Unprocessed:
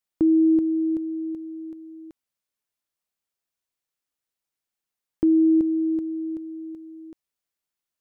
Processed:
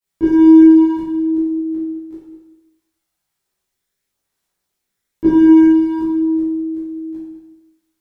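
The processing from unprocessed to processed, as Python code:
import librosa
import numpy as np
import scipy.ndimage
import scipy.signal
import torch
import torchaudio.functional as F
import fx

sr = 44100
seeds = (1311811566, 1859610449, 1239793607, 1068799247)

p1 = fx.low_shelf(x, sr, hz=200.0, db=3.5)
p2 = np.clip(p1, -10.0 ** (-25.0 / 20.0), 10.0 ** (-25.0 / 20.0))
p3 = p1 + F.gain(torch.from_numpy(p2), -4.0).numpy()
p4 = fx.chorus_voices(p3, sr, voices=2, hz=0.57, base_ms=20, depth_ms=1.6, mix_pct=65)
p5 = p4 + 10.0 ** (-13.5 / 20.0) * np.pad(p4, (int(202 * sr / 1000.0), 0))[:len(p4)]
y = fx.rev_plate(p5, sr, seeds[0], rt60_s=0.97, hf_ratio=0.85, predelay_ms=0, drr_db=-9.5)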